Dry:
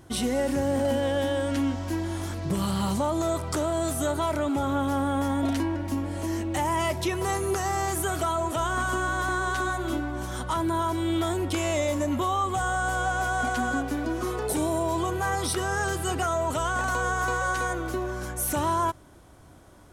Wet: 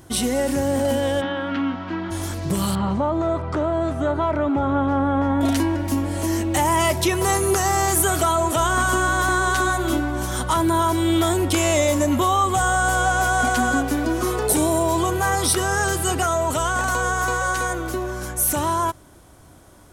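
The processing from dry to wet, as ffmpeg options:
-filter_complex "[0:a]asplit=3[a][b][c];[a]afade=t=out:st=1.2:d=0.02[d];[b]highpass=160,equalizer=f=180:t=q:w=4:g=8,equalizer=f=310:t=q:w=4:g=-3,equalizer=f=540:t=q:w=4:g=-6,equalizer=f=1.3k:t=q:w=4:g=9,lowpass=f=3.4k:w=0.5412,lowpass=f=3.4k:w=1.3066,afade=t=in:st=1.2:d=0.02,afade=t=out:st=2.1:d=0.02[e];[c]afade=t=in:st=2.1:d=0.02[f];[d][e][f]amix=inputs=3:normalize=0,asettb=1/sr,asplit=3[g][h][i];[g]atrim=end=2.754[j];[h]atrim=start=2.75:end=5.41,asetpts=PTS-STARTPTS,afade=t=in:d=0.004:c=qsin,afade=t=out:st=2.656:d=0.004:c=qsin,lowpass=1.9k[k];[i]atrim=start=5.406[l];[j][k]acrossfade=d=0.004:c1=hsin:c2=qsin[m];[m][l]acrossfade=d=0.004:c1=qsin:c2=hsin,highshelf=f=6.2k:g=7,dynaudnorm=f=720:g=13:m=3dB,volume=4dB"

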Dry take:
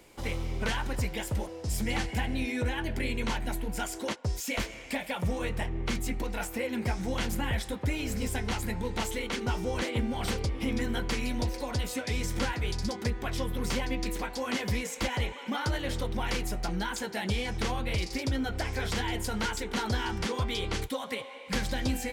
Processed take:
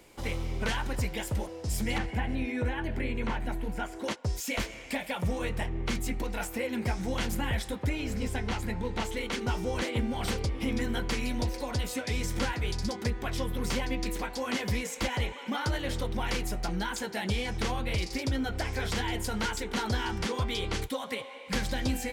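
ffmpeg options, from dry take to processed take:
-filter_complex "[0:a]asettb=1/sr,asplit=3[a][b][c];[a]atrim=end=1.984[d];[b]atrim=start=1.98:end=4.04,asetpts=PTS-STARTPTS,afade=t=in:d=0.004:c=qsin,afade=t=out:st=2.056:d=0.004:c=qsin,acrossover=split=2600[e][f];[f]acompressor=threshold=-54dB:ratio=4:attack=1:release=60[g];[e][g]amix=inputs=2:normalize=0[h];[c]atrim=start=4.036[i];[d][h]acrossfade=d=0.004:c1=hsin:c2=qsin[j];[j][i]acrossfade=d=0.004:c1=qsin:c2=hsin,asettb=1/sr,asplit=3[k][l][m];[k]atrim=end=7.894[n];[l]atrim=start=7.89:end=9.17,asetpts=PTS-STARTPTS,afade=t=in:d=0.004:c=qsin,afade=t=out:st=1.276:d=0.004:c=qsin,highshelf=f=6.6k:g=-10[o];[m]atrim=start=9.166[p];[n][o]acrossfade=d=0.004:c1=hsin:c2=qsin[q];[q][p]acrossfade=d=0.004:c1=qsin:c2=hsin"

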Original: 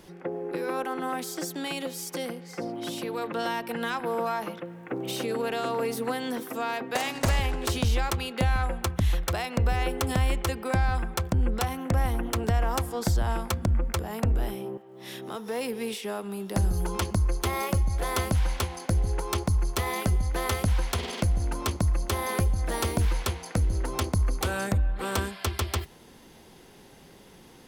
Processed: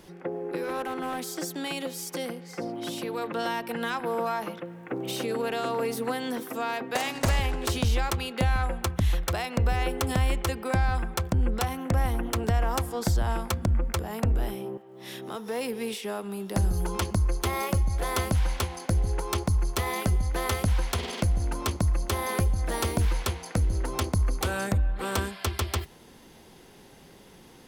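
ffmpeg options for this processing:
-filter_complex "[0:a]asettb=1/sr,asplit=3[a][b][c];[a]atrim=end=0.634[d];[b]atrim=start=0.63:end=1.29,asetpts=PTS-STARTPTS,afade=t=in:d=0.004:c=qsin,afade=t=out:st=0.656:d=0.004:c=qsin,asoftclip=type=hard:threshold=-27.5dB[e];[c]atrim=start=1.286[f];[d][e]acrossfade=d=0.004:c1=hsin:c2=qsin[g];[g][f]acrossfade=d=0.004:c1=qsin:c2=hsin"

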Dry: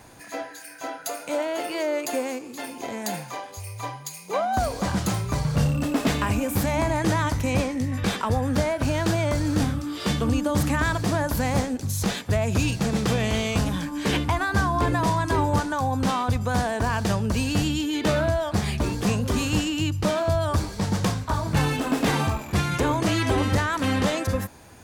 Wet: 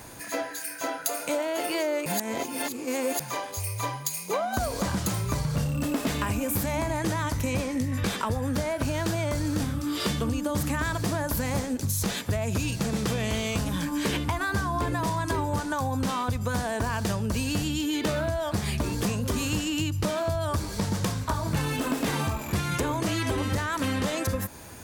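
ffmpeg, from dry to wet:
-filter_complex "[0:a]asplit=3[a][b][c];[a]atrim=end=2.062[d];[b]atrim=start=2.058:end=3.202,asetpts=PTS-STARTPTS,areverse[e];[c]atrim=start=3.198[f];[d][e]acrossfade=d=0.004:c1=hsin:c2=hsin[g];[g][f]acrossfade=d=0.004:c1=hsin:c2=hsin,highshelf=f=9.2k:g=9,bandreject=f=760:w=14,acompressor=threshold=-28dB:ratio=6,volume=3.5dB"

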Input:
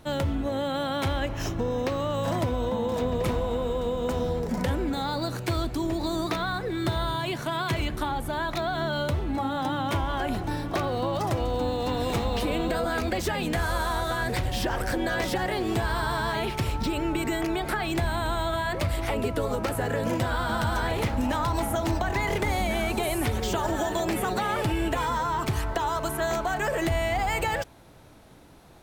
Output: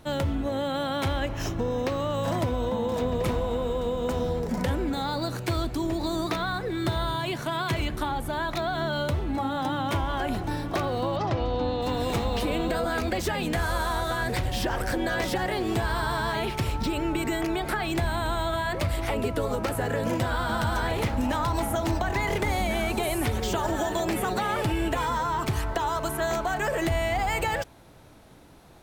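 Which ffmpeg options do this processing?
-filter_complex "[0:a]asplit=3[a][b][c];[a]afade=t=out:st=11.15:d=0.02[d];[b]lowpass=f=5.2k:w=0.5412,lowpass=f=5.2k:w=1.3066,afade=t=in:st=11.15:d=0.02,afade=t=out:st=11.81:d=0.02[e];[c]afade=t=in:st=11.81:d=0.02[f];[d][e][f]amix=inputs=3:normalize=0"

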